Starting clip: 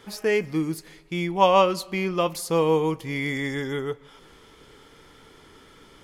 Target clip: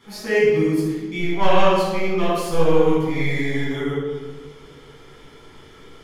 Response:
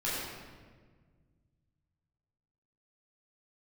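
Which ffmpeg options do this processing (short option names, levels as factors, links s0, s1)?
-filter_complex "[0:a]asettb=1/sr,asplit=3[s0][s1][s2];[s0]atrim=end=1.184[s3];[s1]atrim=start=1.18:end=3.7,asetpts=PTS-STARTPTS,afade=t=in:d=0.004:c=qsin,afade=t=out:st=2.516:d=0.004:c=qsin,aeval=exprs='if(lt(val(0),0),0.447*val(0),val(0))':c=same[s4];[s2]atrim=start=3.696[s5];[s3][s4]acrossfade=d=0.004:c1=hsin:c2=qsin[s6];[s6][s5]acrossfade=d=0.004:c1=qsin:c2=hsin[s7];[1:a]atrim=start_sample=2205,asetrate=57330,aresample=44100[s8];[s7][s8]afir=irnorm=-1:irlink=0,volume=0.891"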